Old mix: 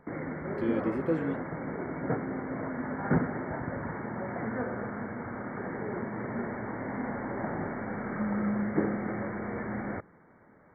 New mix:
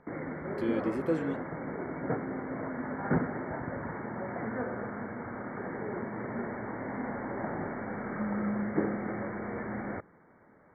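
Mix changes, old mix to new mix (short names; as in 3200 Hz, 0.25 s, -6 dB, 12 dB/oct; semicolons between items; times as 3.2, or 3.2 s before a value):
background: add air absorption 220 m; master: add tone controls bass -3 dB, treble +11 dB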